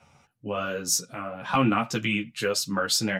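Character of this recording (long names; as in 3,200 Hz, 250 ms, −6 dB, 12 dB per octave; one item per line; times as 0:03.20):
sample-and-hold tremolo
a shimmering, thickened sound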